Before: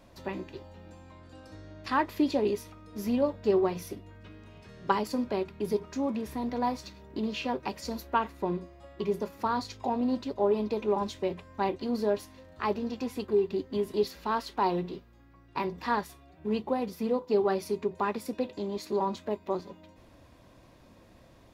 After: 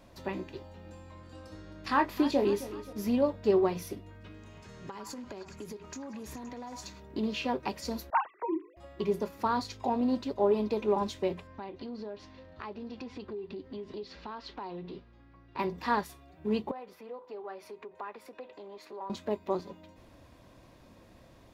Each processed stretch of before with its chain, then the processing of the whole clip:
0.82–2.93 s: doubling 25 ms -8 dB + modulated delay 265 ms, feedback 51%, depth 56 cents, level -15 dB
4.34–7.00 s: peaking EQ 6.9 kHz +10.5 dB 0.36 oct + compression 16:1, threshold -38 dBFS + repeats whose band climbs or falls 104 ms, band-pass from 1.2 kHz, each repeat 0.7 oct, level -2 dB
8.10–8.77 s: formants replaced by sine waves + peaking EQ 440 Hz -11 dB 0.3 oct + hum notches 50/100/150/200/250/300/350/400/450 Hz
11.47–15.59 s: low-pass 5 kHz 24 dB/octave + compression 4:1, threshold -39 dBFS
16.71–19.10 s: compression 3:1, threshold -37 dBFS + three-band isolator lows -18 dB, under 430 Hz, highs -14 dB, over 2.9 kHz
whole clip: none

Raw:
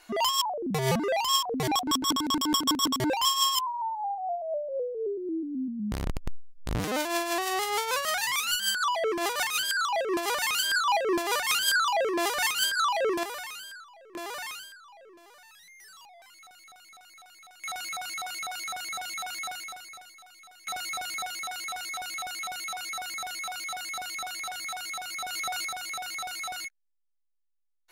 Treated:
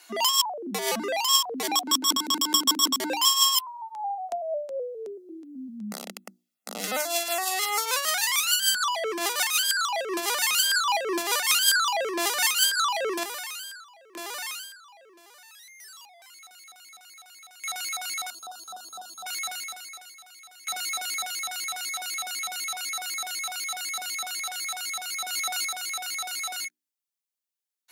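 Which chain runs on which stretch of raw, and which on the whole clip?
3.58–7.86 s: comb 1.5 ms, depth 63% + LFO notch saw down 2.7 Hz 630–7500 Hz
18.30–19.26 s: Butterworth band-stop 2.1 kHz, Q 0.99 + treble shelf 2.1 kHz -12 dB
whole clip: Chebyshev high-pass 190 Hz, order 8; treble shelf 2.5 kHz +10.5 dB; hum notches 60/120/180/240/300/360 Hz; trim -2 dB

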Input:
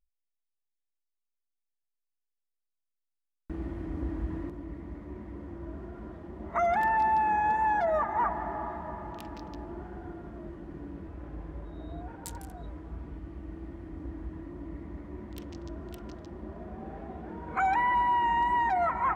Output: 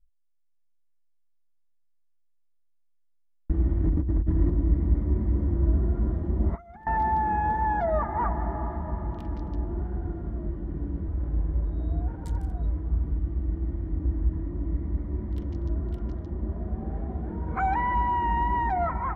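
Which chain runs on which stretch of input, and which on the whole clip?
3.84–6.87 s: bass shelf 420 Hz +3 dB + compressor with a negative ratio -34 dBFS, ratio -0.5 + companded quantiser 8-bit
whole clip: RIAA curve playback; band-stop 2.6 kHz, Q 9.9; level rider gain up to 3.5 dB; trim -4 dB

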